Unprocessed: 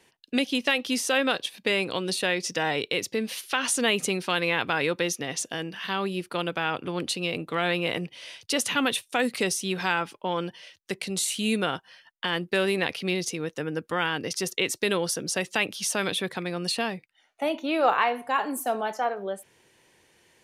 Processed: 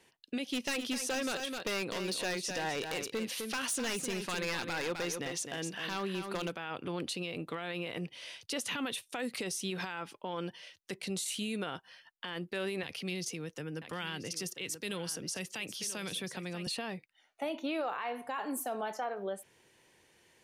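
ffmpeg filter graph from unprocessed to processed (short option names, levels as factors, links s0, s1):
-filter_complex "[0:a]asettb=1/sr,asplit=3[s0][s1][s2];[s0]atrim=end=0.484[s3];[s1]atrim=start=0.48:end=6.52,asetpts=PTS-STARTPTS,afade=t=in:d=0.004:c=qsin,afade=t=out:st=6.036:d=0.004:c=qsin,aeval=exprs='0.1*(abs(mod(val(0)/0.1+3,4)-2)-1)':c=same,aecho=1:1:257:0.376,atrim=end_sample=266364[s4];[s2]atrim=start=6.516[s5];[s3][s4]acrossfade=d=0.004:c1=hsin:c2=qsin[s6];[s6][s5]acrossfade=d=0.004:c1=qsin:c2=hsin,asettb=1/sr,asplit=3[s7][s8][s9];[s7]atrim=end=12.834[s10];[s8]atrim=start=12.83:end=16.67,asetpts=PTS-STARTPTS,afade=t=in:d=0.004:c=qsin,afade=t=out:st=3.836:d=0.004:c=qsin,equalizer=f=3800:w=7.4:g=-5,aecho=1:1:985:0.188,atrim=end_sample=169344,acrossover=split=180|3000[s11][s12][s13];[s12]acompressor=threshold=0.00891:ratio=2:attack=3.2:release=140:knee=2.83:detection=peak[s14];[s11][s14][s13]amix=inputs=3:normalize=0[s15];[s9]atrim=start=16.666[s16];[s10][s15]acrossfade=d=0.004:c1=hsin:c2=qsin[s17];[s17][s16]acrossfade=d=0.004:c1=qsin:c2=hsin,acompressor=threshold=0.0501:ratio=6,alimiter=limit=0.0708:level=0:latency=1:release=23,volume=0.631"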